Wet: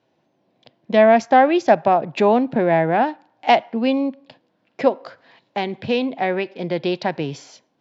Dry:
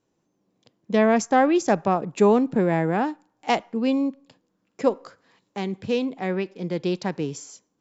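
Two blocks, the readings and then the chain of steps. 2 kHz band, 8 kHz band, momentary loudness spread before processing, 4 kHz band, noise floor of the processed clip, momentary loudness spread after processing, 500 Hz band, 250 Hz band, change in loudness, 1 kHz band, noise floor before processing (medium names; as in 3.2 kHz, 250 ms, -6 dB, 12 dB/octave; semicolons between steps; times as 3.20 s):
+6.0 dB, no reading, 12 LU, +6.0 dB, -68 dBFS, 13 LU, +5.0 dB, +1.5 dB, +4.5 dB, +7.0 dB, -74 dBFS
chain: in parallel at +1.5 dB: compression, threshold -28 dBFS, peak gain reduction 14.5 dB; on the sum: cabinet simulation 140–4300 Hz, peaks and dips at 190 Hz -9 dB, 300 Hz -6 dB, 440 Hz -7 dB, 660 Hz +5 dB, 1.2 kHz -7 dB; trim +4 dB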